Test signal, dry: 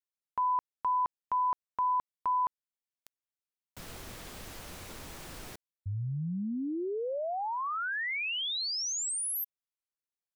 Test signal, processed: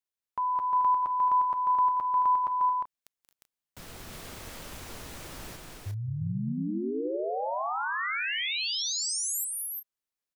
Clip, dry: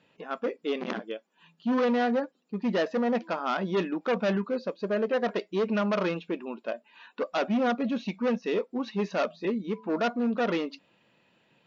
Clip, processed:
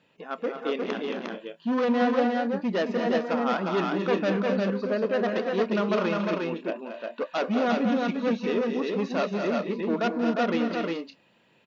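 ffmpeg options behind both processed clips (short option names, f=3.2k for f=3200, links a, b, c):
-af "aecho=1:1:182|222|244|259|355|385:0.224|0.422|0.126|0.178|0.708|0.211"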